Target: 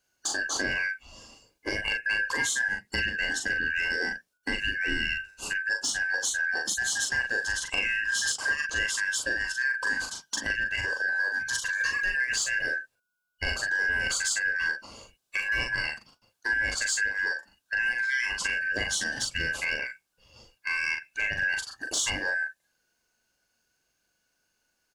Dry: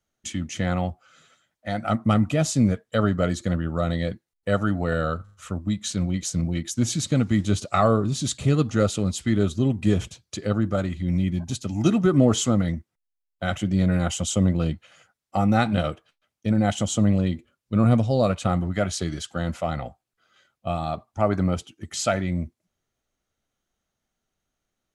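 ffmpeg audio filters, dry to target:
-filter_complex "[0:a]afftfilt=real='real(if(lt(b,272),68*(eq(floor(b/68),0)*1+eq(floor(b/68),1)*0+eq(floor(b/68),2)*3+eq(floor(b/68),3)*2)+mod(b,68),b),0)':imag='imag(if(lt(b,272),68*(eq(floor(b/68),0)*1+eq(floor(b/68),1)*0+eq(floor(b/68),2)*3+eq(floor(b/68),3)*2)+mod(b,68),b),0)':win_size=2048:overlap=0.75,equalizer=f=1.9k:t=o:w=0.53:g=-15,asplit=2[a][b];[b]alimiter=limit=-19.5dB:level=0:latency=1:release=288,volume=2.5dB[c];[a][c]amix=inputs=2:normalize=0,acompressor=threshold=-26dB:ratio=5,asoftclip=type=tanh:threshold=-16.5dB,asplit=2[d][e];[e]adelay=40,volume=-4dB[f];[d][f]amix=inputs=2:normalize=0"

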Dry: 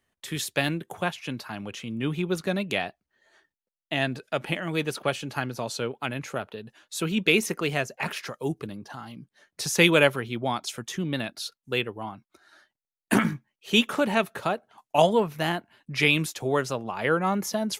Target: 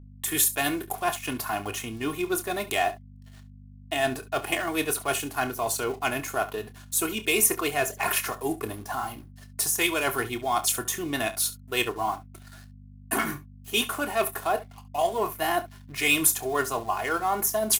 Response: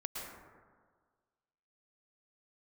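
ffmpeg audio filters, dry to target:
-filter_complex "[0:a]equalizer=f=4.4k:w=0.43:g=-7,acrossover=split=5300[a][b];[a]adynamicsmooth=sensitivity=5.5:basefreq=3.3k[c];[c][b]amix=inputs=2:normalize=0,equalizer=f=880:w=0.97:g=9.5,areverse,acompressor=threshold=-28dB:ratio=6,areverse,aecho=1:1:2.8:0.76,aeval=exprs='sgn(val(0))*max(abs(val(0))-0.00126,0)':c=same,crystalizer=i=7.5:c=0,aeval=exprs='val(0)+0.00562*(sin(2*PI*50*n/s)+sin(2*PI*2*50*n/s)/2+sin(2*PI*3*50*n/s)/3+sin(2*PI*4*50*n/s)/4+sin(2*PI*5*50*n/s)/5)':c=same,aecho=1:1:28|69:0.282|0.15"

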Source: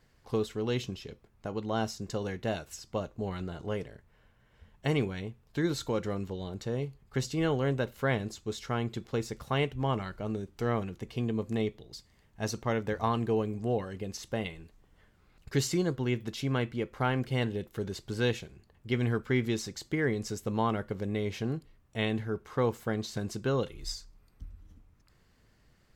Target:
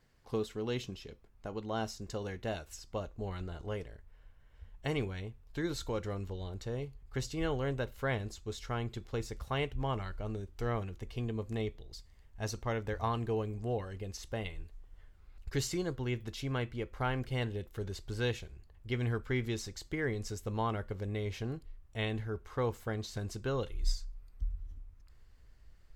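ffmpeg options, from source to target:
-af "asubboost=boost=8:cutoff=59,volume=-4dB"

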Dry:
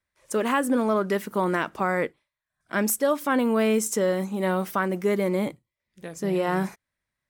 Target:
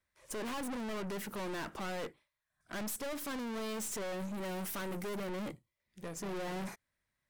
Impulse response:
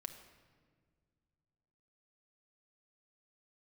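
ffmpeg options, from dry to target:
-filter_complex "[0:a]asettb=1/sr,asplit=3[a][b][c];[a]atrim=end=4.454[d];[b]atrim=start=4.45:end=5.16,asetpts=PTS-STARTPTS,afade=t=in:d=0.004:c=qsin,afade=t=out:st=0.706:d=0.004:c=qsin,equalizer=f=11k:t=o:w=1.4:g=8[e];[c]atrim=start=5.156[f];[d][e]acrossfade=d=0.004:c1=hsin:c2=qsin[g];[g][f]acrossfade=d=0.004:c1=qsin:c2=hsin,aeval=exprs='(tanh(79.4*val(0)+0.35)-tanh(0.35))/79.4':c=same"

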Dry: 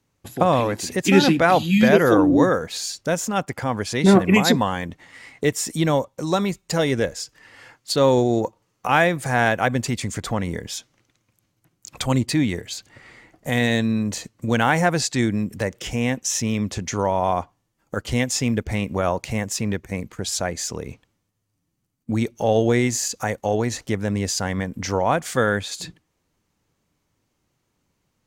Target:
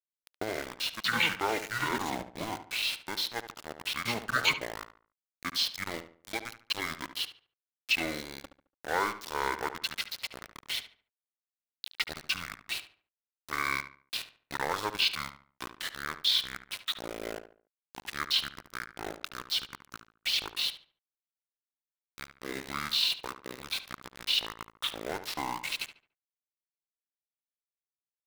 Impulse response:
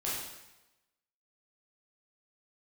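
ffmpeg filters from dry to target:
-filter_complex "[0:a]asetrate=26222,aresample=44100,atempo=1.68179,bandpass=f=3.1k:t=q:w=0.93:csg=0,aeval=exprs='val(0)*gte(abs(val(0)),0.0211)':c=same,asplit=2[a][b];[b]adelay=72,lowpass=f=2.5k:p=1,volume=-10.5dB,asplit=2[c][d];[d]adelay=72,lowpass=f=2.5k:p=1,volume=0.35,asplit=2[e][f];[f]adelay=72,lowpass=f=2.5k:p=1,volume=0.35,asplit=2[g][h];[h]adelay=72,lowpass=f=2.5k:p=1,volume=0.35[i];[a][c][e][g][i]amix=inputs=5:normalize=0"

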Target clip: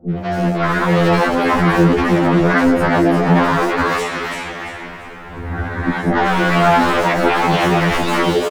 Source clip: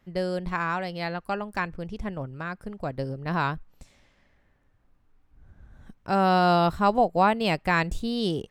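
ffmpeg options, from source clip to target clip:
-filter_complex "[0:a]asplit=2[a][b];[b]asetrate=55563,aresample=44100,atempo=0.793701,volume=-5dB[c];[a][c]amix=inputs=2:normalize=0,aeval=exprs='0.119*(abs(mod(val(0)/0.119+3,4)-2)-1)':c=same,asplit=2[d][e];[e]highpass=f=720:p=1,volume=33dB,asoftclip=type=tanh:threshold=-18dB[f];[d][f]amix=inputs=2:normalize=0,lowpass=f=1.2k:p=1,volume=-6dB,dynaudnorm=f=240:g=9:m=12dB,acrossover=split=520|5000[g][h][i];[h]adelay=100[j];[i]adelay=180[k];[g][j][k]amix=inputs=3:normalize=0,acompressor=threshold=-19dB:ratio=2,asplit=2[l][m];[m]asplit=4[n][o][p][q];[n]adelay=341,afreqshift=130,volume=-4dB[r];[o]adelay=682,afreqshift=260,volume=-13.9dB[s];[p]adelay=1023,afreqshift=390,volume=-23.8dB[t];[q]adelay=1364,afreqshift=520,volume=-33.7dB[u];[r][s][t][u]amix=inputs=4:normalize=0[v];[l][v]amix=inputs=2:normalize=0,alimiter=level_in=11.5dB:limit=-1dB:release=50:level=0:latency=1,afftfilt=real='re*2*eq(mod(b,4),0)':imag='im*2*eq(mod(b,4),0)':win_size=2048:overlap=0.75,volume=-3dB"

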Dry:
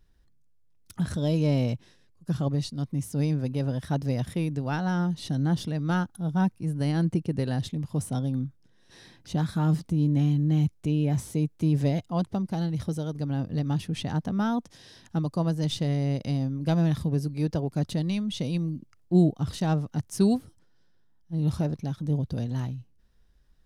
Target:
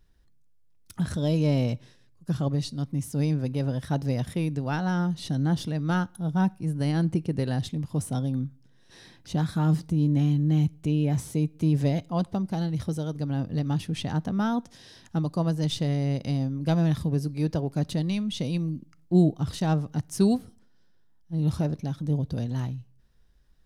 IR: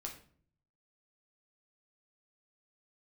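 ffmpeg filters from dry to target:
-filter_complex "[0:a]asplit=2[a][b];[1:a]atrim=start_sample=2205,lowshelf=f=440:g=-8[c];[b][c]afir=irnorm=-1:irlink=0,volume=-14dB[d];[a][d]amix=inputs=2:normalize=0"

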